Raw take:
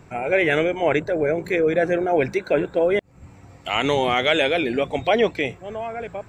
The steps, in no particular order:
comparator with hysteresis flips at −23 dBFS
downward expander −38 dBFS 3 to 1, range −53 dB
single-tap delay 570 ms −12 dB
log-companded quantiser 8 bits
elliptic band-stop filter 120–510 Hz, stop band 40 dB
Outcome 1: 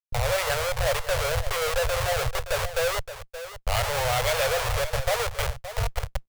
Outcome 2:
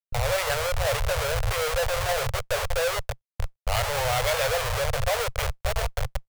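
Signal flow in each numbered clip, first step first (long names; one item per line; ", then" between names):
comparator with hysteresis, then elliptic band-stop filter, then log-companded quantiser, then single-tap delay, then downward expander
single-tap delay, then comparator with hysteresis, then log-companded quantiser, then elliptic band-stop filter, then downward expander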